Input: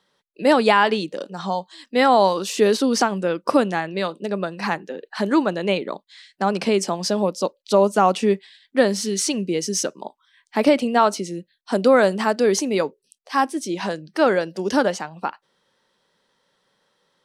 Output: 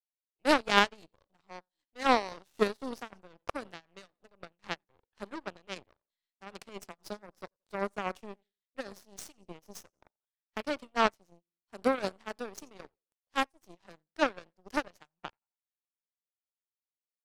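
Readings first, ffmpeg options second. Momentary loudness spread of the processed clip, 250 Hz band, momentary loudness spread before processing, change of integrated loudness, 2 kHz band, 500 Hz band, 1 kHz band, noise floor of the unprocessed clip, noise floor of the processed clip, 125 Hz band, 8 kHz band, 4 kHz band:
23 LU, -16.5 dB, 12 LU, -12.0 dB, -9.5 dB, -16.5 dB, -12.5 dB, -71 dBFS, under -85 dBFS, -19.0 dB, -20.5 dB, -10.0 dB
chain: -af "aecho=1:1:88|176|264:0.112|0.0359|0.0115,tremolo=f=3.8:d=0.52,aeval=exprs='0.708*(cos(1*acos(clip(val(0)/0.708,-1,1)))-cos(1*PI/2))+0.224*(cos(3*acos(clip(val(0)/0.708,-1,1)))-cos(3*PI/2))+0.0251*(cos(5*acos(clip(val(0)/0.708,-1,1)))-cos(5*PI/2))+0.0224*(cos(7*acos(clip(val(0)/0.708,-1,1)))-cos(7*PI/2))+0.00708*(cos(8*acos(clip(val(0)/0.708,-1,1)))-cos(8*PI/2))':c=same,volume=-1dB"

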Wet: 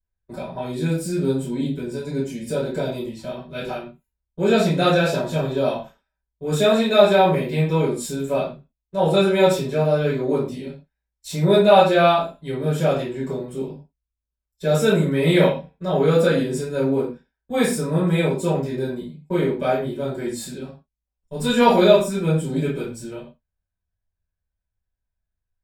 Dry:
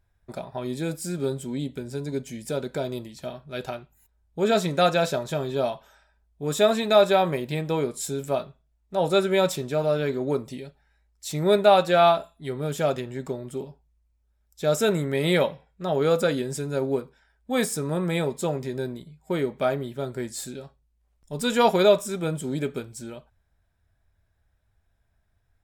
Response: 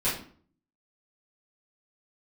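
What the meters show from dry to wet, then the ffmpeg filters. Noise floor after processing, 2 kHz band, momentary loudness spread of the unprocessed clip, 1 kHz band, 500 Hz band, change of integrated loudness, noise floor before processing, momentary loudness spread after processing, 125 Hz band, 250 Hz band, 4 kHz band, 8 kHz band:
-84 dBFS, +4.5 dB, 17 LU, +3.5 dB, +4.0 dB, +4.5 dB, -70 dBFS, 16 LU, +7.5 dB, +6.5 dB, +3.0 dB, +0.5 dB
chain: -filter_complex "[0:a]agate=range=-21dB:threshold=-45dB:ratio=16:detection=peak[a];[1:a]atrim=start_sample=2205,afade=t=out:st=0.2:d=0.01,atrim=end_sample=9261[b];[a][b]afir=irnorm=-1:irlink=0,volume=-6.5dB"

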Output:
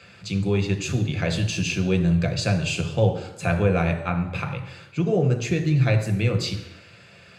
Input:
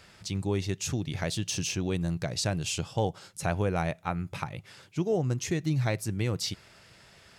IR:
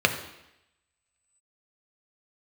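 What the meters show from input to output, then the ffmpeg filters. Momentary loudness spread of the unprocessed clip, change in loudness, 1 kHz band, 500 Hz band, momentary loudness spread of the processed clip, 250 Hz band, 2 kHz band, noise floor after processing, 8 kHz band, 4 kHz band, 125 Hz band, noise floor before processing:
7 LU, +7.5 dB, +3.5 dB, +7.0 dB, 8 LU, +8.0 dB, +8.5 dB, -49 dBFS, -0.5 dB, +4.0 dB, +9.0 dB, -57 dBFS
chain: -filter_complex "[1:a]atrim=start_sample=2205[a];[0:a][a]afir=irnorm=-1:irlink=0,volume=-9dB"

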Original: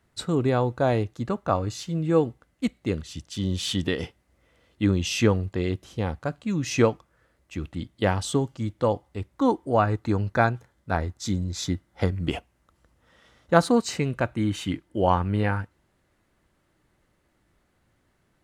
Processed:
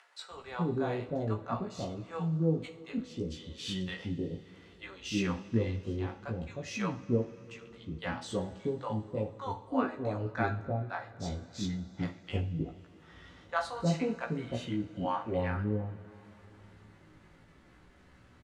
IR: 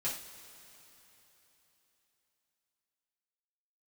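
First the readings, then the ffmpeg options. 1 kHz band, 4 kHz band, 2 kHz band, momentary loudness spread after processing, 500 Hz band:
-10.0 dB, -9.5 dB, -8.5 dB, 14 LU, -9.5 dB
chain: -filter_complex "[0:a]acompressor=mode=upward:threshold=-34dB:ratio=2.5,flanger=delay=15.5:depth=3.5:speed=0.62,acrossover=split=630[a][b];[a]adelay=310[c];[c][b]amix=inputs=2:normalize=0,asplit=2[d][e];[1:a]atrim=start_sample=2205[f];[e][f]afir=irnorm=-1:irlink=0,volume=-6dB[g];[d][g]amix=inputs=2:normalize=0,adynamicsmooth=sensitivity=1:basefreq=6.6k,volume=-8dB"

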